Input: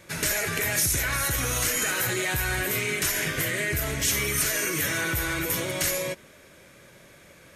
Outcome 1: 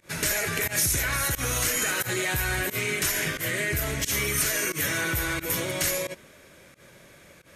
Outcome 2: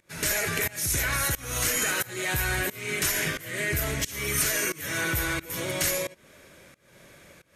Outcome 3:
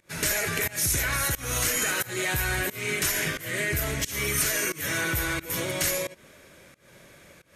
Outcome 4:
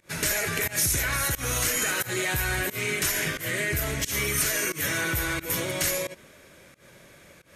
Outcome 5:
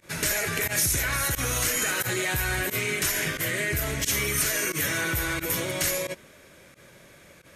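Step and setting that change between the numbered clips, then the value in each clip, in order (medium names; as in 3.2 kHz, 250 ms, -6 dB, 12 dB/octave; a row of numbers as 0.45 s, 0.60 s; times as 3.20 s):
volume shaper, release: 104 ms, 385 ms, 260 ms, 162 ms, 66 ms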